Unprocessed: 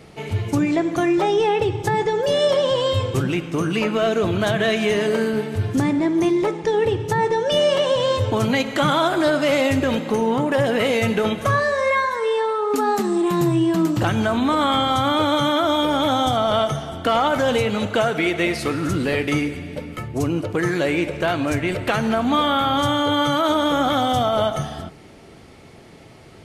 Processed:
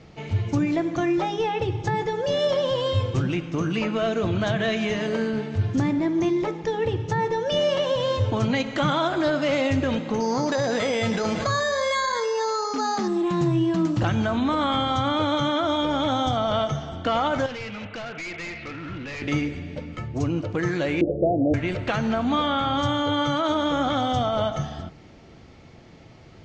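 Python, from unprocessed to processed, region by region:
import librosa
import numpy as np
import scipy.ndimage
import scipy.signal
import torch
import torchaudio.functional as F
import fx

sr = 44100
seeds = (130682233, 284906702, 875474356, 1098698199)

y = fx.chain(x, sr, fx.low_shelf(hz=270.0, db=-8.0),
    fx.resample_bad(factor=8, down='filtered', up='hold'),
    fx.env_flatten(amount_pct=70), at=(10.2, 13.08))
y = fx.chain(y, sr, fx.ladder_lowpass(hz=3000.0, resonance_pct=45),
    fx.peak_eq(hz=2200.0, db=5.0, octaves=2.4),
    fx.overload_stage(gain_db=27.0), at=(17.46, 19.22))
y = fx.chain(y, sr, fx.steep_lowpass(hz=770.0, slope=96),
    fx.peak_eq(hz=420.0, db=9.5, octaves=1.3), at=(21.01, 21.54))
y = scipy.signal.sosfilt(scipy.signal.butter(8, 7000.0, 'lowpass', fs=sr, output='sos'), y)
y = fx.low_shelf(y, sr, hz=170.0, db=6.0)
y = fx.notch(y, sr, hz=410.0, q=12.0)
y = y * 10.0 ** (-5.0 / 20.0)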